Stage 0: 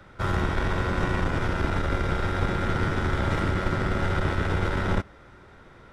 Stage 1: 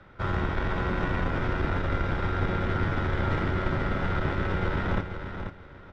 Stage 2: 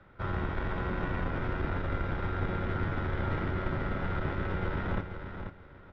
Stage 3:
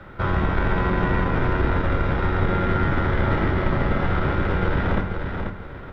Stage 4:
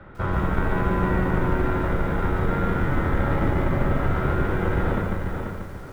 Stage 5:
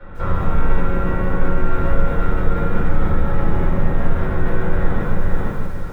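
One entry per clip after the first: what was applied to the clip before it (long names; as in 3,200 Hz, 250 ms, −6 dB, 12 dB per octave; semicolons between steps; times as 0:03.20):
low-pass filter 3,800 Hz 12 dB per octave; repeating echo 487 ms, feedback 23%, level −8 dB; level −2.5 dB
high-frequency loss of the air 140 metres; level −4.5 dB
in parallel at +1 dB: downward compressor, threshold −41 dBFS, peak gain reduction 14.5 dB; on the sum: convolution reverb RT60 0.60 s, pre-delay 8 ms, DRR 6.5 dB; level +8 dB
low-pass filter 1,900 Hz 6 dB per octave; feedback echo at a low word length 147 ms, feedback 35%, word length 8 bits, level −4.5 dB; level −2 dB
brickwall limiter −19.5 dBFS, peak gain reduction 10 dB; rectangular room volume 160 cubic metres, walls furnished, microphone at 4.4 metres; level −4 dB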